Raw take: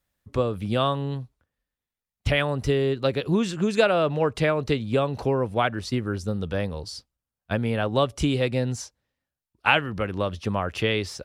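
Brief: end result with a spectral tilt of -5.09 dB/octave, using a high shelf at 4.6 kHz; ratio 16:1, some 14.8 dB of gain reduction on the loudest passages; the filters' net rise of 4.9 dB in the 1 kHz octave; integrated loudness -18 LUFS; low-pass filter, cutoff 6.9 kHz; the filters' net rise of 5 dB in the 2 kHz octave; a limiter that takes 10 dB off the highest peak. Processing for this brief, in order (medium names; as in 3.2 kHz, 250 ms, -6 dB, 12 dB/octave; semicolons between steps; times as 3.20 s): low-pass 6.9 kHz; peaking EQ 1 kHz +5 dB; peaking EQ 2 kHz +6.5 dB; treble shelf 4.6 kHz -7 dB; compression 16:1, threshold -26 dBFS; trim +15.5 dB; peak limiter -6.5 dBFS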